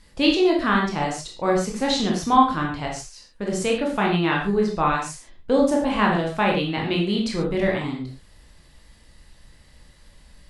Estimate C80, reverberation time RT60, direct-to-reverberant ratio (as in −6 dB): 9.0 dB, non-exponential decay, −1.5 dB